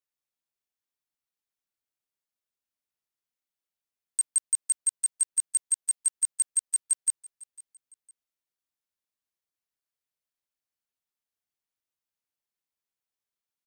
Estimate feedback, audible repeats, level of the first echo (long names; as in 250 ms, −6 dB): 29%, 2, −20.0 dB